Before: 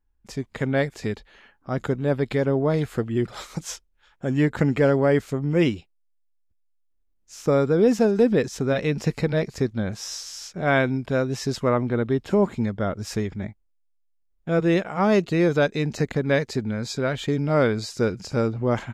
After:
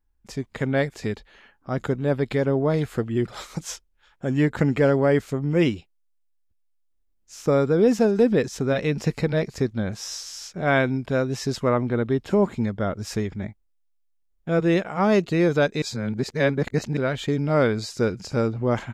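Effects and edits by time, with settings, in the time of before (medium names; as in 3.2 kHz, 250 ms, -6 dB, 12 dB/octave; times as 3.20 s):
15.82–16.97 s: reverse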